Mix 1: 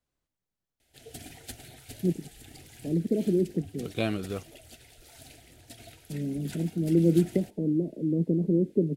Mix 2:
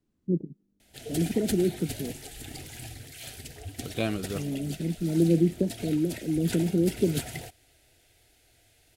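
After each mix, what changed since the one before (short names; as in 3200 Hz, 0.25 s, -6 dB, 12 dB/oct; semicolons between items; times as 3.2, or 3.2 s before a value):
first voice: entry -1.75 s; background +8.0 dB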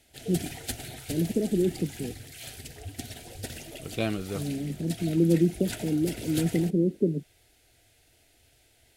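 background: entry -0.80 s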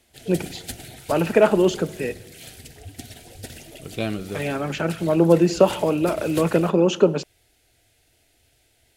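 first voice: remove inverse Chebyshev low-pass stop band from 1500 Hz, stop band 70 dB; reverb: on, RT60 1.7 s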